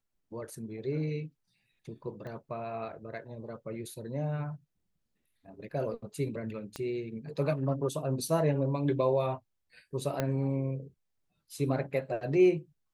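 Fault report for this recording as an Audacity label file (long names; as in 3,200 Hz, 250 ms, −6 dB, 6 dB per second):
2.270000	2.270000	click −32 dBFS
6.760000	6.760000	click −23 dBFS
10.200000	10.200000	click −15 dBFS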